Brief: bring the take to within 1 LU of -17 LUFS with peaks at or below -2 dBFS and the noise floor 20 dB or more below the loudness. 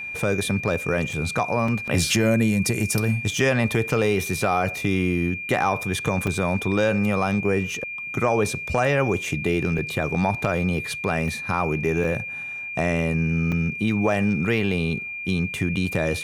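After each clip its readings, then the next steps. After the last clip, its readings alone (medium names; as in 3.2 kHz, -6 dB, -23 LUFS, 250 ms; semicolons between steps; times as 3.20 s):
dropouts 7; longest dropout 3.5 ms; steady tone 2.4 kHz; tone level -30 dBFS; loudness -23.0 LUFS; peak level -8.5 dBFS; loudness target -17.0 LUFS
-> interpolate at 1.13/1.68/6.27/9.78/11.28/12.04/13.52 s, 3.5 ms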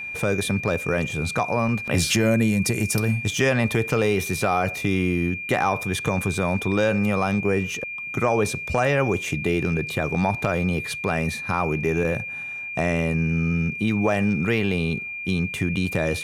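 dropouts 0; steady tone 2.4 kHz; tone level -30 dBFS
-> band-stop 2.4 kHz, Q 30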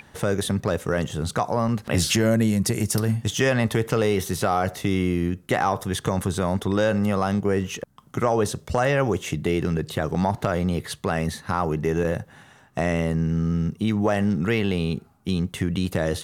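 steady tone not found; loudness -24.0 LUFS; peak level -9.5 dBFS; loudness target -17.0 LUFS
-> trim +7 dB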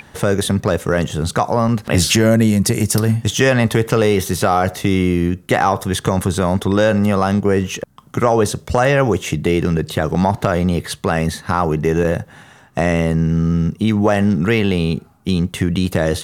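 loudness -17.0 LUFS; peak level -2.5 dBFS; noise floor -46 dBFS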